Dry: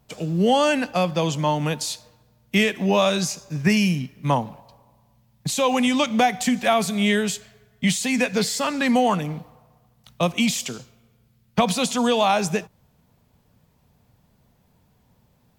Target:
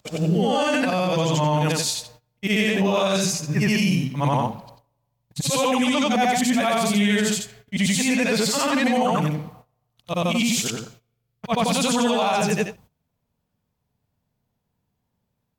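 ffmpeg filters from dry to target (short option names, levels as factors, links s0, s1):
-af "afftfilt=real='re':imag='-im':win_size=8192:overlap=0.75,agate=range=0.112:threshold=0.00178:ratio=16:detection=peak,alimiter=limit=0.0841:level=0:latency=1:release=38,volume=2.82"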